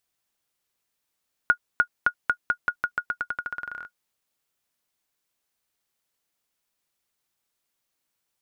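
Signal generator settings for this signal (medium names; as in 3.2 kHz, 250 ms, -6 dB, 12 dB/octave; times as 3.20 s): bouncing ball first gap 0.30 s, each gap 0.88, 1.44 kHz, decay 76 ms -7 dBFS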